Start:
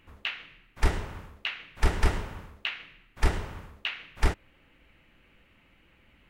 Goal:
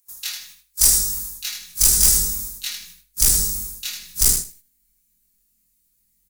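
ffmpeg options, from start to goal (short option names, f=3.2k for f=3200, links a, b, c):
-filter_complex "[0:a]afftfilt=real='re':imag='-im':win_size=2048:overlap=0.75,agate=range=-20dB:threshold=-55dB:ratio=16:detection=peak,lowshelf=f=490:g=-8.5,aecho=1:1:4.8:0.9,acrossover=split=510[a][b];[b]aexciter=amount=11.8:drive=9.7:freq=4.6k[c];[a][c]amix=inputs=2:normalize=0,asubboost=boost=11:cutoff=240,volume=15.5dB,asoftclip=hard,volume=-15.5dB,crystalizer=i=2.5:c=0,asplit=2[d][e];[e]aecho=0:1:79|158|237:0.473|0.0852|0.0153[f];[d][f]amix=inputs=2:normalize=0,volume=-3dB"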